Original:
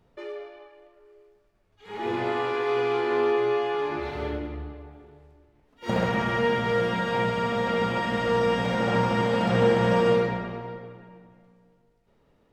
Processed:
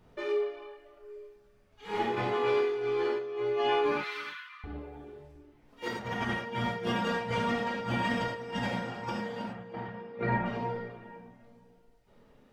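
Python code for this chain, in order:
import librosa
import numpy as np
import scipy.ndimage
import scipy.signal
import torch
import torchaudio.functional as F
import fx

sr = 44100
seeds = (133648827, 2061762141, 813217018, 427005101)

y = fx.self_delay(x, sr, depth_ms=0.065, at=(7.09, 7.75))
y = fx.lowpass(y, sr, hz=2600.0, slope=12, at=(9.44, 10.46))
y = fx.dereverb_blind(y, sr, rt60_s=0.92)
y = fx.over_compress(y, sr, threshold_db=-32.0, ratio=-0.5)
y = fx.brickwall_highpass(y, sr, low_hz=950.0, at=(3.92, 4.64))
y = y + 10.0 ** (-20.0 / 20.0) * np.pad(y, (int(313 * sr / 1000.0), 0))[:len(y)]
y = fx.rev_gated(y, sr, seeds[0], gate_ms=130, shape='flat', drr_db=-2.5)
y = y * librosa.db_to_amplitude(-3.5)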